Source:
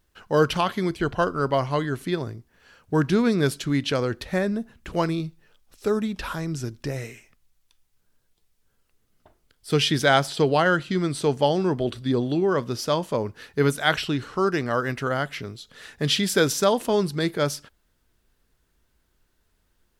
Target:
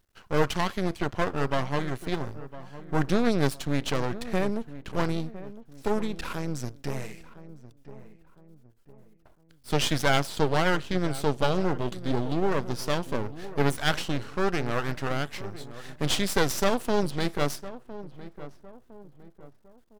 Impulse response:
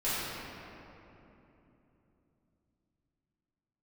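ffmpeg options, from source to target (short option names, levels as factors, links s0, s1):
-filter_complex "[0:a]aeval=exprs='max(val(0),0)':c=same,asplit=2[s0][s1];[s1]adelay=1008,lowpass=f=1200:p=1,volume=0.188,asplit=2[s2][s3];[s3]adelay=1008,lowpass=f=1200:p=1,volume=0.42,asplit=2[s4][s5];[s5]adelay=1008,lowpass=f=1200:p=1,volume=0.42,asplit=2[s6][s7];[s7]adelay=1008,lowpass=f=1200:p=1,volume=0.42[s8];[s0][s2][s4][s6][s8]amix=inputs=5:normalize=0"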